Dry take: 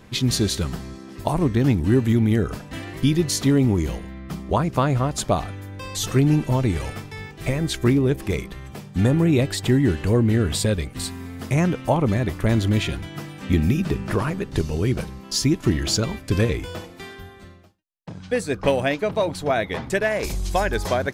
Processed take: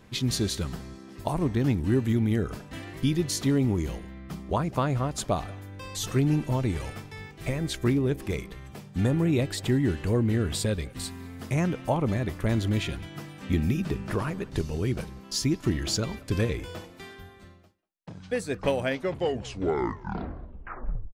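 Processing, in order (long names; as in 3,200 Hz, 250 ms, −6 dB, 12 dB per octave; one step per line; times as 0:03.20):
turntable brake at the end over 2.37 s
far-end echo of a speakerphone 190 ms, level −22 dB
level −6 dB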